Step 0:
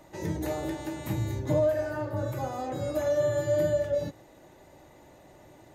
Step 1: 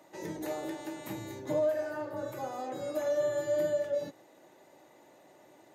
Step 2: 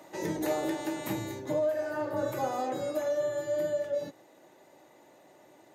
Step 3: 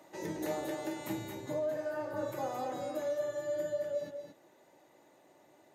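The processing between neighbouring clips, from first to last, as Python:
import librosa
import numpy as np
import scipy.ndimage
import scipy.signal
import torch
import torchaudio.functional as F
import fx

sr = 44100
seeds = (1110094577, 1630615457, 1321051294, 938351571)

y1 = scipy.signal.sosfilt(scipy.signal.butter(2, 250.0, 'highpass', fs=sr, output='sos'), x)
y1 = F.gain(torch.from_numpy(y1), -3.5).numpy()
y2 = fx.rider(y1, sr, range_db=4, speed_s=0.5)
y2 = F.gain(torch.from_numpy(y2), 2.5).numpy()
y3 = y2 + 10.0 ** (-6.5 / 20.0) * np.pad(y2, (int(221 * sr / 1000.0), 0))[:len(y2)]
y3 = F.gain(torch.from_numpy(y3), -6.0).numpy()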